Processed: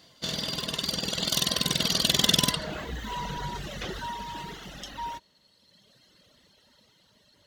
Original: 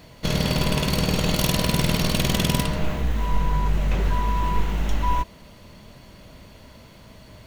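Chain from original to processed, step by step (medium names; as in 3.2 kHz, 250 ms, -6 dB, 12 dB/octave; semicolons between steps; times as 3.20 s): Doppler pass-by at 2.91 s, 18 m/s, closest 17 m; frequency weighting D; reverb removal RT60 1.8 s; peaking EQ 2.4 kHz -13.5 dB 0.37 oct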